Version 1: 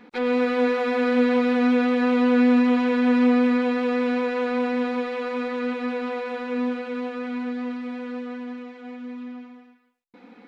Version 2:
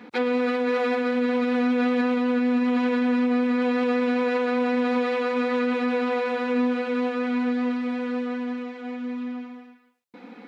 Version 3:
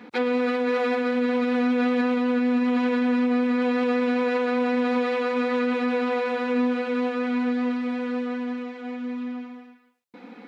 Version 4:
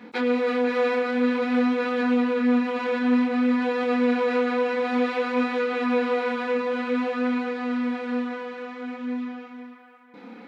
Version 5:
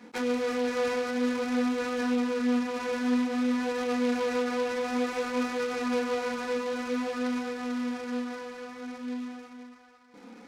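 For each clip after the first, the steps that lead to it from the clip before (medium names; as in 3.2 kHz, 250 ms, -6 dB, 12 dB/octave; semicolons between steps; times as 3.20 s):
high-pass 83 Hz 24 dB/octave; peak limiter -21 dBFS, peak gain reduction 11 dB; trim +4.5 dB
no audible change
chorus 0.53 Hz, depth 7.9 ms; band-passed feedback delay 498 ms, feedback 53%, band-pass 1.2 kHz, level -8.5 dB; trim +3 dB
delay time shaken by noise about 2.9 kHz, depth 0.035 ms; trim -5.5 dB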